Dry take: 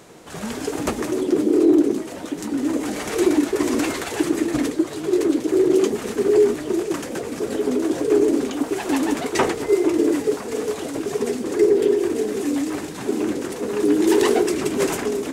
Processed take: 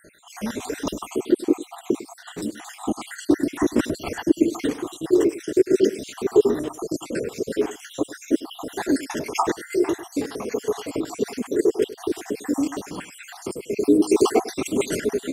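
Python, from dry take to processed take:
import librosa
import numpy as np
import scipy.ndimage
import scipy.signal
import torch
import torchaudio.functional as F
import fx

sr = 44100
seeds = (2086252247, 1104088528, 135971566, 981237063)

y = fx.spec_dropout(x, sr, seeds[0], share_pct=67)
y = fx.tilt_eq(y, sr, slope=-1.5, at=(2.84, 4.43))
y = y + 10.0 ** (-16.0 / 20.0) * np.pad(y, (int(101 * sr / 1000.0), 0))[:len(y)]
y = y * librosa.db_to_amplitude(2.0)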